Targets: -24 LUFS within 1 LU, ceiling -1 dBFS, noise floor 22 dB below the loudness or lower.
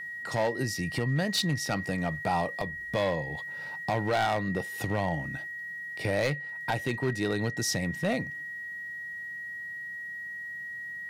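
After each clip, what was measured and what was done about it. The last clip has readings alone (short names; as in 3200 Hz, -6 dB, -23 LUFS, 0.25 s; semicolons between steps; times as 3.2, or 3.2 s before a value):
clipped 0.9%; flat tops at -21.0 dBFS; steady tone 1900 Hz; tone level -36 dBFS; loudness -31.0 LUFS; peak -21.0 dBFS; loudness target -24.0 LUFS
-> clip repair -21 dBFS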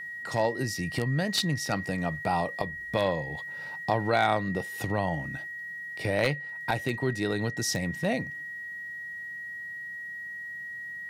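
clipped 0.0%; steady tone 1900 Hz; tone level -36 dBFS
-> notch 1900 Hz, Q 30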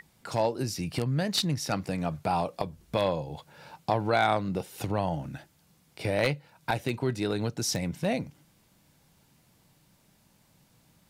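steady tone none; loudness -30.0 LUFS; peak -11.5 dBFS; loudness target -24.0 LUFS
-> gain +6 dB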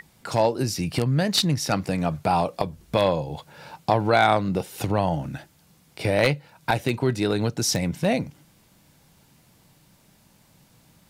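loudness -24.0 LUFS; peak -5.5 dBFS; noise floor -59 dBFS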